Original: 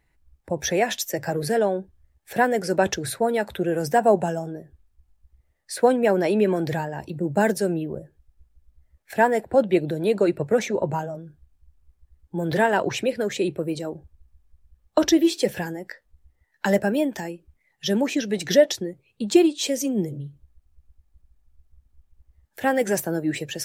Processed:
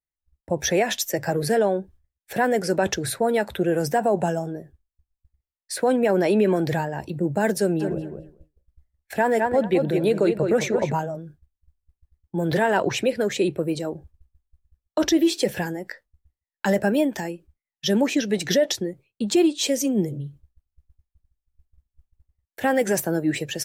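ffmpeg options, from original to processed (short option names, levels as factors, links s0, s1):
-filter_complex "[0:a]asplit=3[s0][s1][s2];[s0]afade=t=out:st=7.79:d=0.02[s3];[s1]asplit=2[s4][s5];[s5]adelay=211,lowpass=f=3900:p=1,volume=0.447,asplit=2[s6][s7];[s7]adelay=211,lowpass=f=3900:p=1,volume=0.19,asplit=2[s8][s9];[s9]adelay=211,lowpass=f=3900:p=1,volume=0.19[s10];[s4][s6][s8][s10]amix=inputs=4:normalize=0,afade=t=in:st=7.79:d=0.02,afade=t=out:st=10.92:d=0.02[s11];[s2]afade=t=in:st=10.92:d=0.02[s12];[s3][s11][s12]amix=inputs=3:normalize=0,agate=range=0.0224:threshold=0.00708:ratio=3:detection=peak,alimiter=limit=0.224:level=0:latency=1:release=46,volume=1.26"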